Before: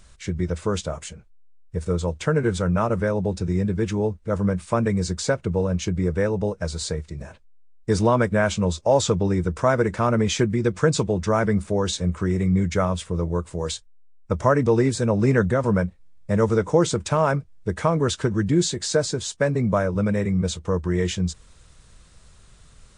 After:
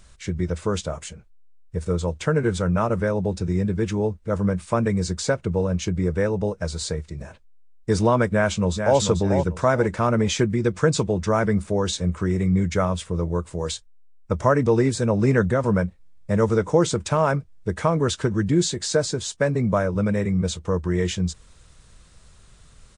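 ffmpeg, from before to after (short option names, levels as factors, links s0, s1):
-filter_complex "[0:a]asplit=2[s0][s1];[s1]afade=t=in:st=8.28:d=0.01,afade=t=out:st=8.99:d=0.01,aecho=0:1:440|880|1320:0.473151|0.118288|0.029572[s2];[s0][s2]amix=inputs=2:normalize=0"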